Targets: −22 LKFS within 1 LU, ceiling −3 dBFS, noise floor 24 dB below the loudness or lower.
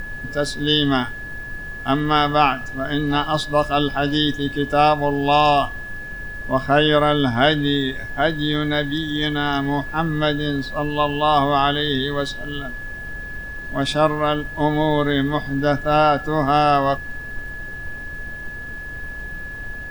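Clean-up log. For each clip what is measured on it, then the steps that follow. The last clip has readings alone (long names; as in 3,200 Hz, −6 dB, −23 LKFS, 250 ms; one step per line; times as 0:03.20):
interfering tone 1,700 Hz; level of the tone −31 dBFS; background noise floor −32 dBFS; target noise floor −44 dBFS; integrated loudness −19.5 LKFS; sample peak −3.5 dBFS; target loudness −22.0 LKFS
→ notch filter 1,700 Hz, Q 30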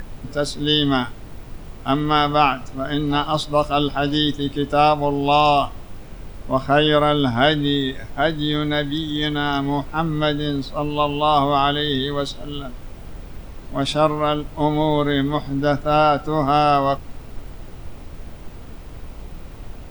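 interfering tone none found; background noise floor −37 dBFS; target noise floor −44 dBFS
→ noise reduction from a noise print 7 dB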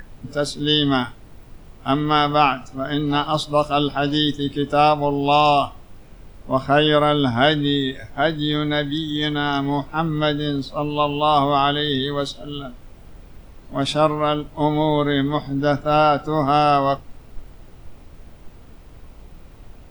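background noise floor −44 dBFS; integrated loudness −20.0 LKFS; sample peak −3.5 dBFS; target loudness −22.0 LKFS
→ level −2 dB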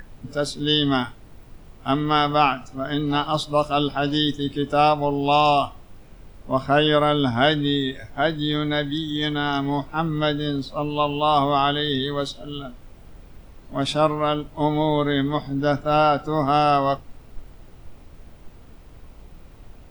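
integrated loudness −22.0 LKFS; sample peak −5.5 dBFS; background noise floor −46 dBFS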